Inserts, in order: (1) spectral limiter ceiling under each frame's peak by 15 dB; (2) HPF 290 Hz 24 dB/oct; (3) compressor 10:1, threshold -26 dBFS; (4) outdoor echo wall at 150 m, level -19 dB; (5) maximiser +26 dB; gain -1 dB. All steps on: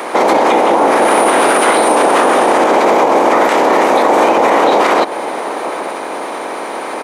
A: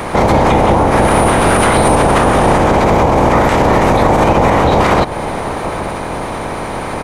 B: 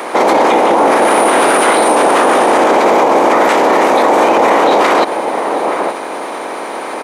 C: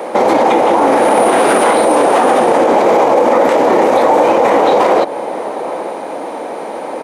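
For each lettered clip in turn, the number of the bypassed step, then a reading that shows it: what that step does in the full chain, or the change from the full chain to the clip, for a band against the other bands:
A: 2, 125 Hz band +23.0 dB; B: 3, mean gain reduction 5.0 dB; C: 1, 125 Hz band +5.0 dB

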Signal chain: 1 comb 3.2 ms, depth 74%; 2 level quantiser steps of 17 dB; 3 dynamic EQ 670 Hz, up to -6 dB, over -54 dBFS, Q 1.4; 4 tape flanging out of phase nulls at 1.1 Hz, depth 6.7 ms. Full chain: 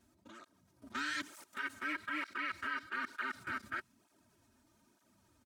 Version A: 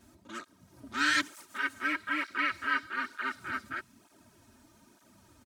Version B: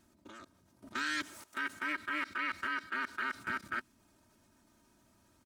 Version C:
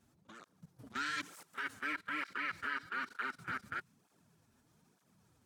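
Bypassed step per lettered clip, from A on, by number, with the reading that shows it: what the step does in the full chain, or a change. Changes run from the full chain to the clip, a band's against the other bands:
2, crest factor change +4.5 dB; 4, loudness change +3.0 LU; 1, 125 Hz band +5.5 dB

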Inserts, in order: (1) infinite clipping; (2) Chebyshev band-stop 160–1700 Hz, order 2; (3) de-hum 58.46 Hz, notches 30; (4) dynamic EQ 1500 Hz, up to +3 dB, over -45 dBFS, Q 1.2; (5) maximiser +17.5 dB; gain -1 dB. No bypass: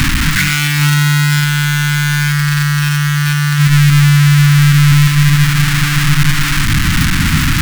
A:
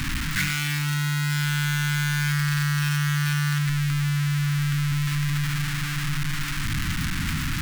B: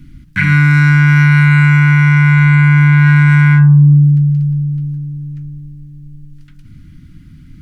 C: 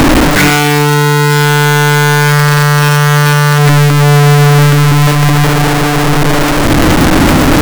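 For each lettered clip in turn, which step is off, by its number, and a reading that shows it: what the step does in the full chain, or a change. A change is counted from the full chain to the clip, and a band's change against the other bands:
5, crest factor change +4.5 dB; 1, 1 kHz band -3.0 dB; 2, 1 kHz band +9.0 dB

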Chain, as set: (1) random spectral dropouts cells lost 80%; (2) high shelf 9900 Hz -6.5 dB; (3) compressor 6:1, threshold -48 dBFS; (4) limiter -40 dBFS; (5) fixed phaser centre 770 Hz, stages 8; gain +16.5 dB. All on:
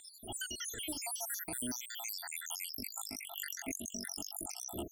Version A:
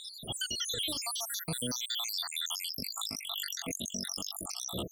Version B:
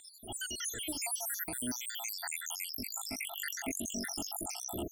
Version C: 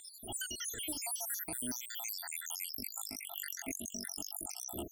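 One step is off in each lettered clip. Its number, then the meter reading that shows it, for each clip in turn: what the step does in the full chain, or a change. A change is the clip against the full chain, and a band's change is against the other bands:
5, crest factor change -5.5 dB; 3, mean gain reduction 12.5 dB; 2, 8 kHz band +2.0 dB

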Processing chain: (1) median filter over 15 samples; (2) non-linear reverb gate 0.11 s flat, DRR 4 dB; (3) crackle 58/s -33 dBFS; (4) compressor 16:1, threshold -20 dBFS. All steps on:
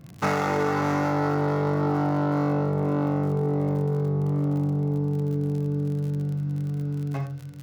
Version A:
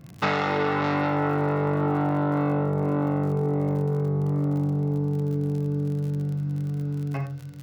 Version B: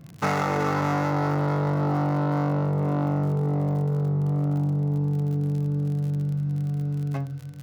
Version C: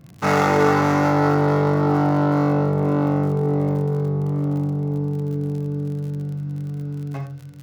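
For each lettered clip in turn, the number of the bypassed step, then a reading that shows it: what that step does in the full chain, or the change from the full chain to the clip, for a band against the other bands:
1, 2 kHz band +2.0 dB; 2, momentary loudness spread change -2 LU; 4, mean gain reduction 3.0 dB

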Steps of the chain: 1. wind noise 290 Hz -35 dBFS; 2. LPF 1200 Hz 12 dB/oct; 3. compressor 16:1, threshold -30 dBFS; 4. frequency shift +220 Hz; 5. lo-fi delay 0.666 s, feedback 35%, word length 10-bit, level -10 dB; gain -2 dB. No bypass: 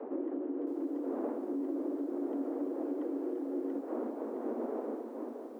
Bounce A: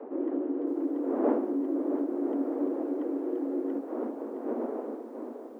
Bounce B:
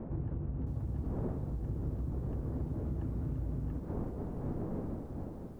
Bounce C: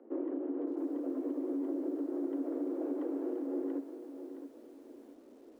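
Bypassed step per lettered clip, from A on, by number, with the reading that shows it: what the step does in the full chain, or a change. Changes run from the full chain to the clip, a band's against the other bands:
3, mean gain reduction 4.0 dB; 4, crest factor change +2.5 dB; 1, momentary loudness spread change +15 LU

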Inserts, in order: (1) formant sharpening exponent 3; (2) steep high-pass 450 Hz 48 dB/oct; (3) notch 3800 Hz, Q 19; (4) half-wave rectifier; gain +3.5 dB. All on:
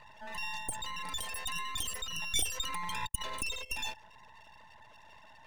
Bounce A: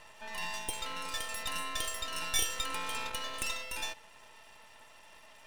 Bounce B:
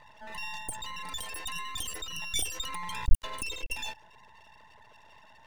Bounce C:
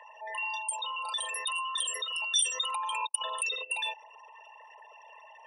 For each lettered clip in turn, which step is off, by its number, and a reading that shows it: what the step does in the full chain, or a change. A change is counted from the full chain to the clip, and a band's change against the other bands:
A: 1, 125 Hz band -5.0 dB; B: 2, 125 Hz band +7.5 dB; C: 4, crest factor change -3.0 dB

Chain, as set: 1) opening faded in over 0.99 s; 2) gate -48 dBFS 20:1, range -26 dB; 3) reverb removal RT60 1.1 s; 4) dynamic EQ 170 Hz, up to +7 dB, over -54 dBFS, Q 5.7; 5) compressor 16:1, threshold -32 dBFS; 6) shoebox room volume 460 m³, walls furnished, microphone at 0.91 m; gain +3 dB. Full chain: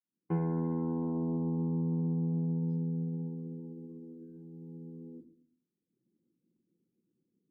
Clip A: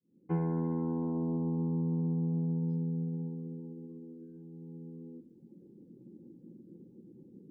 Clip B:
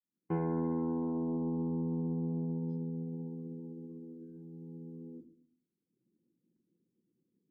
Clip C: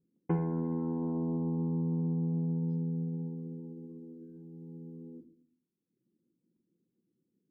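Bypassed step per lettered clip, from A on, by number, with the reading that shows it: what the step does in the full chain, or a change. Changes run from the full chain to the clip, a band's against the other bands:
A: 2, momentary loudness spread change +4 LU; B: 4, momentary loudness spread change -2 LU; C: 1, crest factor change +3.0 dB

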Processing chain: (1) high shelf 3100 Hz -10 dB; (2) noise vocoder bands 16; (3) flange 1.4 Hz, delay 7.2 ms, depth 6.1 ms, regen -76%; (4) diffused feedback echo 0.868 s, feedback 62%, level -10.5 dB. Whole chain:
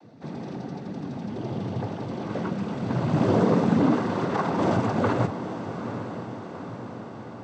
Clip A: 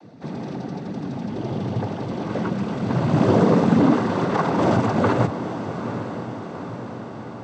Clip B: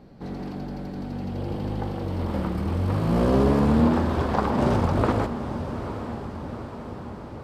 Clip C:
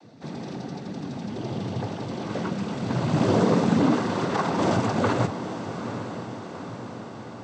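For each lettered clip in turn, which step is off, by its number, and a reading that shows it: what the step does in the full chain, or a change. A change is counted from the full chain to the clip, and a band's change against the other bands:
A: 3, loudness change +4.5 LU; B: 2, 125 Hz band +2.0 dB; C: 1, 4 kHz band +5.5 dB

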